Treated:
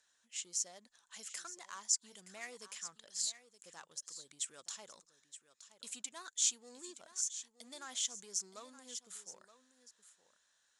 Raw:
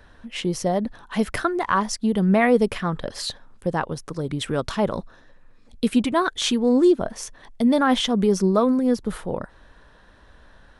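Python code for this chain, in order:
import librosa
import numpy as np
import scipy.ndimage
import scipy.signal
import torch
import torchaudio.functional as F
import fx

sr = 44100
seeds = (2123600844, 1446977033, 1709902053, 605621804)

p1 = np.clip(x, -10.0 ** (-23.0 / 20.0), 10.0 ** (-23.0 / 20.0))
p2 = x + (p1 * 10.0 ** (-8.0 / 20.0))
p3 = fx.bandpass_q(p2, sr, hz=7100.0, q=6.1)
p4 = p3 + 10.0 ** (-13.5 / 20.0) * np.pad(p3, (int(921 * sr / 1000.0), 0))[:len(p3)]
y = p4 * 10.0 ** (2.5 / 20.0)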